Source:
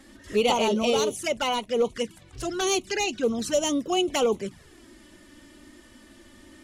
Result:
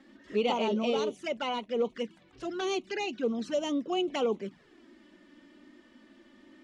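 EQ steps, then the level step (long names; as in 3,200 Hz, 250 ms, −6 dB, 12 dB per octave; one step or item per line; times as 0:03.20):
low-pass filter 3,700 Hz 12 dB per octave
low shelf with overshoot 140 Hz −12.5 dB, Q 1.5
−6.5 dB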